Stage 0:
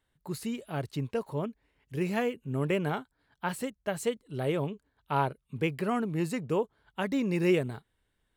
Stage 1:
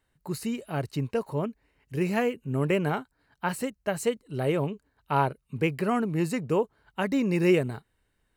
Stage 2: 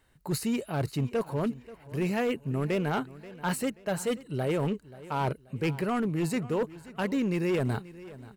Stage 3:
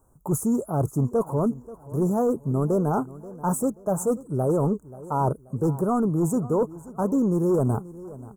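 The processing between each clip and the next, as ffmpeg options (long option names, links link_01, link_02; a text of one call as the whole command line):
ffmpeg -i in.wav -af "bandreject=frequency=3400:width=6.7,volume=3.5dB" out.wav
ffmpeg -i in.wav -af "areverse,acompressor=threshold=-33dB:ratio=5,areverse,asoftclip=type=hard:threshold=-30.5dB,aecho=1:1:532|1064|1596:0.126|0.0453|0.0163,volume=7.5dB" out.wav
ffmpeg -i in.wav -af "asuperstop=centerf=2900:order=12:qfactor=0.57,volume=6dB" out.wav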